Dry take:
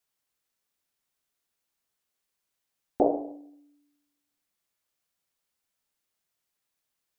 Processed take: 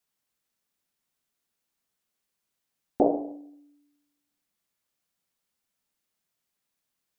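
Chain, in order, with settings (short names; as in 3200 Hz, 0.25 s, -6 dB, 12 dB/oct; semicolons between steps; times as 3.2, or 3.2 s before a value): bell 200 Hz +5.5 dB 1 oct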